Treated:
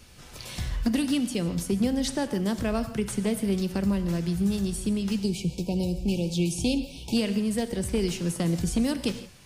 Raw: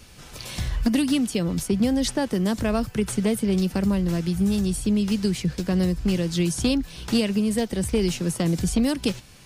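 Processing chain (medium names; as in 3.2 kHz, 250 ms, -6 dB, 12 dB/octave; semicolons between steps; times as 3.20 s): spectral selection erased 5.19–7.17 s, 990–2200 Hz; gated-style reverb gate 190 ms flat, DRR 10 dB; trim -4 dB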